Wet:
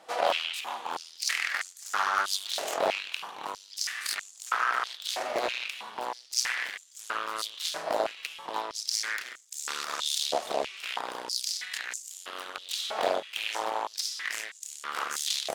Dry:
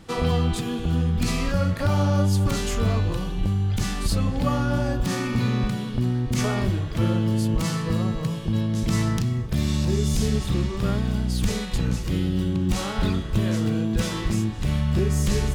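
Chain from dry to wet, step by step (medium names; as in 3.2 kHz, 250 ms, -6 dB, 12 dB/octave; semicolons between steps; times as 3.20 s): Chebyshev shaper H 3 -12 dB, 4 -14 dB, 7 -17 dB, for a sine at -9.5 dBFS; step-sequenced high-pass 3.1 Hz 660–7100 Hz; trim -2 dB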